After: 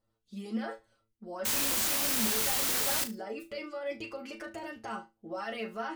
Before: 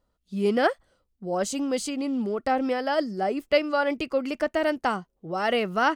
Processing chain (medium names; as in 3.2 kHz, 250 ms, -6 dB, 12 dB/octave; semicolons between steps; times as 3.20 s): harmonic-percussive split harmonic -6 dB; peak limiter -27 dBFS, peak gain reduction 17.5 dB; inharmonic resonator 110 Hz, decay 0.22 s, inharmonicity 0.002; 1.45–3.04 s: word length cut 6-bit, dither triangular; on a send: flutter echo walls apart 6.2 m, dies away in 0.22 s; on the sum: trim +6 dB